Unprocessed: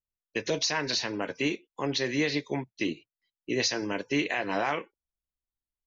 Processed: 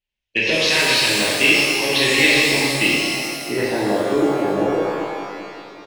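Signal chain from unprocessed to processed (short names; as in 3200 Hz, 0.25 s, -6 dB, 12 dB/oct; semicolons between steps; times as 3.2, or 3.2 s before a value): in parallel at -6.5 dB: wrapped overs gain 18 dB; on the sum: high shelf 2500 Hz +8 dB; on a send: feedback echo 0.389 s, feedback 54%, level -17 dB; on the sum: low-pass sweep 2800 Hz -> 440 Hz, 3.11–4.29; bell 1200 Hz -14 dB 0.37 oct; shimmer reverb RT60 2 s, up +12 st, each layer -8 dB, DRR -5.5 dB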